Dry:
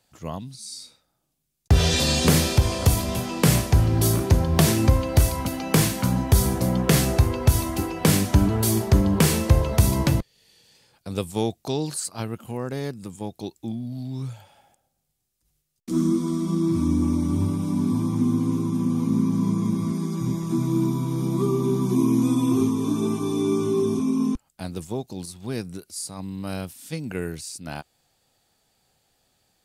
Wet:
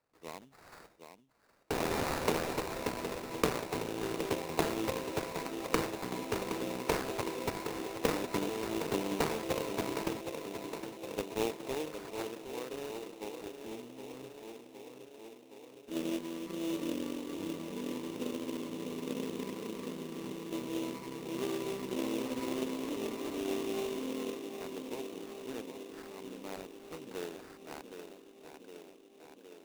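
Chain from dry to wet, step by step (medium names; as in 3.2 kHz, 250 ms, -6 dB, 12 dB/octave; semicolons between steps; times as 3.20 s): Chebyshev shaper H 3 -14 dB, 6 -24 dB, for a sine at -4 dBFS; cabinet simulation 290–5900 Hz, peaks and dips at 320 Hz +4 dB, 450 Hz +7 dB, 960 Hz +5 dB, 2.4 kHz +7 dB, 3.6 kHz +9 dB; tape echo 765 ms, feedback 78%, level -7 dB, low-pass 2 kHz; sample-rate reducer 3.2 kHz, jitter 20%; trim -8 dB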